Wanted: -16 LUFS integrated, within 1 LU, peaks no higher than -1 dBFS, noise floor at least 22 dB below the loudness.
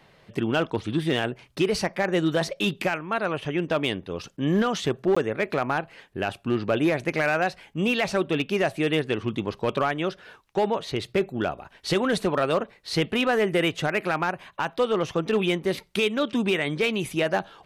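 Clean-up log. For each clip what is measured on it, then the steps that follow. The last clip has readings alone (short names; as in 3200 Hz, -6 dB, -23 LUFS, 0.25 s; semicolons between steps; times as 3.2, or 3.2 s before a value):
clipped 0.9%; flat tops at -15.5 dBFS; dropouts 1; longest dropout 15 ms; loudness -25.5 LUFS; peak -15.5 dBFS; loudness target -16.0 LUFS
-> clip repair -15.5 dBFS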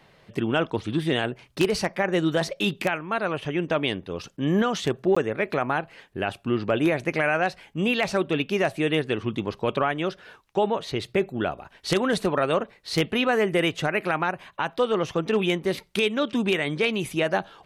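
clipped 0.0%; dropouts 1; longest dropout 15 ms
-> interpolate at 5.15, 15 ms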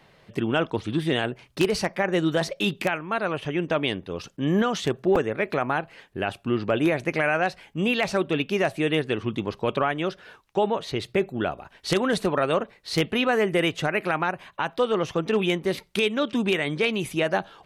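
dropouts 0; loudness -25.5 LUFS; peak -6.5 dBFS; loudness target -16.0 LUFS
-> gain +9.5 dB; limiter -1 dBFS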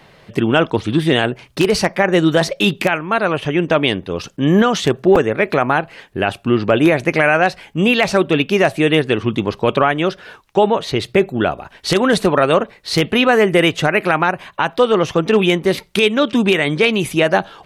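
loudness -16.0 LUFS; peak -1.0 dBFS; noise floor -48 dBFS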